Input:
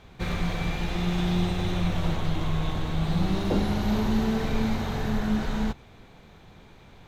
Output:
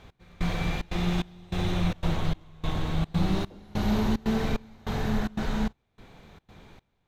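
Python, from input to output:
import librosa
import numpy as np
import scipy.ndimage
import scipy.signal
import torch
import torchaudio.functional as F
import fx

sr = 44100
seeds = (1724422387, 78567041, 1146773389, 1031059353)

y = fx.step_gate(x, sr, bpm=148, pattern='x...xxxx.xx', floor_db=-24.0, edge_ms=4.5)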